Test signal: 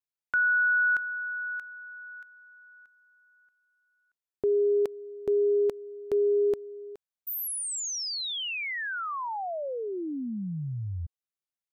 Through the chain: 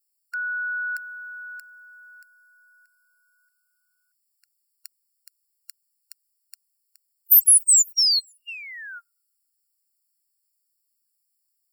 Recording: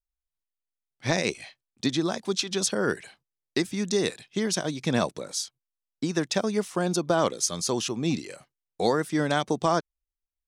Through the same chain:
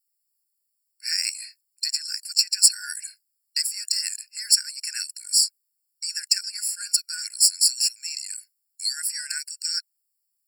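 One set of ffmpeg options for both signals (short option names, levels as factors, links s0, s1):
-af "highshelf=f=6700:g=6.5,aexciter=amount=4.5:drive=9.2:freq=3500,afftfilt=real='re*eq(mod(floor(b*sr/1024/1400),2),1)':imag='im*eq(mod(floor(b*sr/1024/1400),2),1)':win_size=1024:overlap=0.75,volume=0.596"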